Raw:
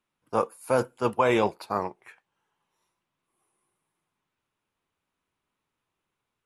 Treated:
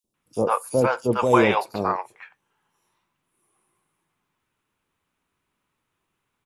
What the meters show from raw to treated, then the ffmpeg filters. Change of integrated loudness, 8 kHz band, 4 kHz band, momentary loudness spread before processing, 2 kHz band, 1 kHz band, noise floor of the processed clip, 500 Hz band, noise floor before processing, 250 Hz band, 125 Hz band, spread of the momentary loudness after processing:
+5.0 dB, +6.0 dB, +4.5 dB, 8 LU, +6.0 dB, +5.0 dB, −78 dBFS, +4.5 dB, −84 dBFS, +6.0 dB, +6.5 dB, 12 LU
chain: -filter_complex "[0:a]acrossover=split=630|4500[link_01][link_02][link_03];[link_01]adelay=40[link_04];[link_02]adelay=140[link_05];[link_04][link_05][link_03]amix=inputs=3:normalize=0,volume=6.5dB"

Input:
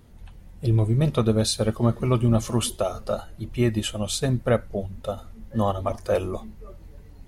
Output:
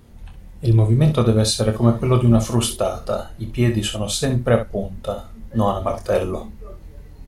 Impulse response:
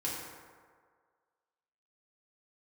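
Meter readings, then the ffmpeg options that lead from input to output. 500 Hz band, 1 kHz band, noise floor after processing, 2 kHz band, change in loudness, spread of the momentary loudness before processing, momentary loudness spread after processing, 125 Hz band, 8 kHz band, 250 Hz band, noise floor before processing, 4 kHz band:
+4.5 dB, +4.5 dB, −41 dBFS, +4.5 dB, +5.0 dB, 12 LU, 12 LU, +5.5 dB, +4.5 dB, +5.0 dB, −47 dBFS, +4.5 dB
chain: -af "aecho=1:1:26|65:0.422|0.316,volume=3.5dB"

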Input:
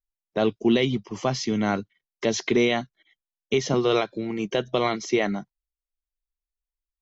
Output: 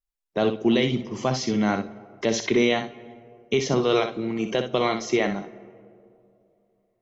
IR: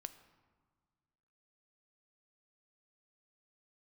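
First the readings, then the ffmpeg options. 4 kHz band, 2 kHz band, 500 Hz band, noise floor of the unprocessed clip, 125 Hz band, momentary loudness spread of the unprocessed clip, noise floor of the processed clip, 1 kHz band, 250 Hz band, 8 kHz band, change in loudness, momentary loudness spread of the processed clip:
+0.5 dB, +0.5 dB, +0.5 dB, below −85 dBFS, +0.5 dB, 8 LU, −75 dBFS, +0.5 dB, +0.5 dB, can't be measured, +0.5 dB, 8 LU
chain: -filter_complex "[0:a]asplit=2[link_01][link_02];[1:a]atrim=start_sample=2205,asetrate=23373,aresample=44100,adelay=62[link_03];[link_02][link_03]afir=irnorm=-1:irlink=0,volume=-6.5dB[link_04];[link_01][link_04]amix=inputs=2:normalize=0"

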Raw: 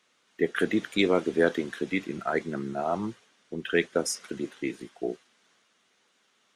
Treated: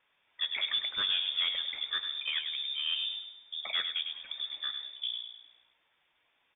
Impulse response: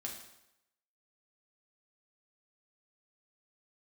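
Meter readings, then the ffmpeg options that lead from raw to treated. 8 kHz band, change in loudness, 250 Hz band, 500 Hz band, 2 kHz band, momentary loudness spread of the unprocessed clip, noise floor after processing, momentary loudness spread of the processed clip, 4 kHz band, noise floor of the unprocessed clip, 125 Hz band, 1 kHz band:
below −40 dB, −3.0 dB, below −35 dB, −31.0 dB, −6.5 dB, 11 LU, −74 dBFS, 10 LU, +11.5 dB, −69 dBFS, below −25 dB, −14.0 dB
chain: -filter_complex "[0:a]aresample=16000,asoftclip=type=tanh:threshold=-21dB,aresample=44100,asplit=2[link_01][link_02];[link_02]adelay=102,lowpass=frequency=1100:poles=1,volume=-4dB,asplit=2[link_03][link_04];[link_04]adelay=102,lowpass=frequency=1100:poles=1,volume=0.48,asplit=2[link_05][link_06];[link_06]adelay=102,lowpass=frequency=1100:poles=1,volume=0.48,asplit=2[link_07][link_08];[link_08]adelay=102,lowpass=frequency=1100:poles=1,volume=0.48,asplit=2[link_09][link_10];[link_10]adelay=102,lowpass=frequency=1100:poles=1,volume=0.48,asplit=2[link_11][link_12];[link_12]adelay=102,lowpass=frequency=1100:poles=1,volume=0.48[link_13];[link_01][link_03][link_05][link_07][link_09][link_11][link_13]amix=inputs=7:normalize=0,lowpass=frequency=3200:width_type=q:width=0.5098,lowpass=frequency=3200:width_type=q:width=0.6013,lowpass=frequency=3200:width_type=q:width=0.9,lowpass=frequency=3200:width_type=q:width=2.563,afreqshift=-3800,volume=-4dB"

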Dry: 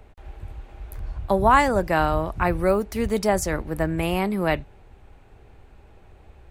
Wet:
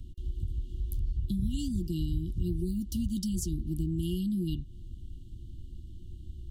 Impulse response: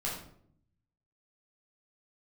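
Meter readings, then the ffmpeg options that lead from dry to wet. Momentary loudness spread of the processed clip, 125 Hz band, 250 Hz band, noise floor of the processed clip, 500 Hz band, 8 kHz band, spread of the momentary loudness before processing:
16 LU, −2.5 dB, −5.0 dB, −46 dBFS, −22.0 dB, −7.5 dB, 23 LU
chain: -af "afftfilt=real='re*(1-between(b*sr/4096,370,2800))':imag='im*(1-between(b*sr/4096,370,2800))':win_size=4096:overlap=0.75,acompressor=threshold=-36dB:ratio=3,bass=frequency=250:gain=7,treble=frequency=4000:gain=1"

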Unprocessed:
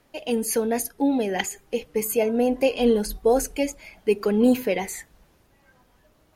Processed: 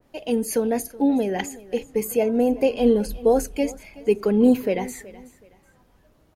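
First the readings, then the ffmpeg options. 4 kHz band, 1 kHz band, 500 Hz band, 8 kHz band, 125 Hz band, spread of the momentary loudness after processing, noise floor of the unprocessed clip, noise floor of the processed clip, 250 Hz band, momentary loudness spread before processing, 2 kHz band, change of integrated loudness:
−4.0 dB, −0.5 dB, +1.0 dB, −4.0 dB, can't be measured, 10 LU, −62 dBFS, −60 dBFS, +2.5 dB, 9 LU, −3.5 dB, +1.5 dB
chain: -filter_complex "[0:a]tiltshelf=frequency=700:gain=3,asplit=2[link_01][link_02];[link_02]aecho=0:1:374|748:0.1|0.03[link_03];[link_01][link_03]amix=inputs=2:normalize=0,adynamicequalizer=threshold=0.02:dfrequency=1700:dqfactor=0.7:tfrequency=1700:tqfactor=0.7:attack=5:release=100:ratio=0.375:range=1.5:mode=cutabove:tftype=highshelf"

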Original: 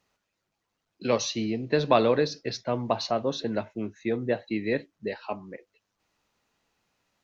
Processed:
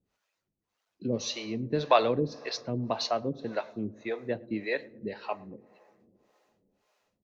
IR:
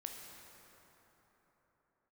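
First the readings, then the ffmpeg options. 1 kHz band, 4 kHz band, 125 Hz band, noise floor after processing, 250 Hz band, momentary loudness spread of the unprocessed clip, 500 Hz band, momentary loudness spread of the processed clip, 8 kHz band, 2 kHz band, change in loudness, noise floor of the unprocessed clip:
−1.0 dB, −2.0 dB, −2.5 dB, −84 dBFS, −4.0 dB, 14 LU, −4.0 dB, 14 LU, can't be measured, −2.5 dB, −3.5 dB, −81 dBFS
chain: -filter_complex "[0:a]asplit=2[link_01][link_02];[1:a]atrim=start_sample=2205[link_03];[link_02][link_03]afir=irnorm=-1:irlink=0,volume=-12dB[link_04];[link_01][link_04]amix=inputs=2:normalize=0,acrossover=split=430[link_05][link_06];[link_05]aeval=exprs='val(0)*(1-1/2+1/2*cos(2*PI*1.8*n/s))':channel_layout=same[link_07];[link_06]aeval=exprs='val(0)*(1-1/2-1/2*cos(2*PI*1.8*n/s))':channel_layout=same[link_08];[link_07][link_08]amix=inputs=2:normalize=0,asplit=2[link_09][link_10];[link_10]adelay=110,lowpass=frequency=1300:poles=1,volume=-22.5dB,asplit=2[link_11][link_12];[link_12]adelay=110,lowpass=frequency=1300:poles=1,volume=0.39,asplit=2[link_13][link_14];[link_14]adelay=110,lowpass=frequency=1300:poles=1,volume=0.39[link_15];[link_09][link_11][link_13][link_15]amix=inputs=4:normalize=0"

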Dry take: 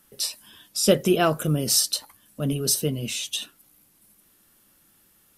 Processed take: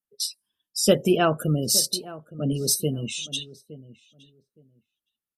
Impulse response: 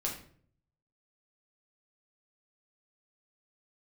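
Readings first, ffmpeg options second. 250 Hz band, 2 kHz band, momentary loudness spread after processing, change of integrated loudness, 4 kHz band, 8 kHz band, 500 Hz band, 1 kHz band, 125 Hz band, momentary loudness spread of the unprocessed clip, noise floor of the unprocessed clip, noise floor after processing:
0.0 dB, −1.0 dB, 12 LU, −0.5 dB, −0.5 dB, −0.5 dB, 0.0 dB, 0.0 dB, 0.0 dB, 11 LU, −61 dBFS, below −85 dBFS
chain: -filter_complex "[0:a]afftdn=noise_reduction=34:noise_floor=-33,asplit=2[link_01][link_02];[link_02]adelay=866,lowpass=frequency=1200:poles=1,volume=-16.5dB,asplit=2[link_03][link_04];[link_04]adelay=866,lowpass=frequency=1200:poles=1,volume=0.19[link_05];[link_03][link_05]amix=inputs=2:normalize=0[link_06];[link_01][link_06]amix=inputs=2:normalize=0"

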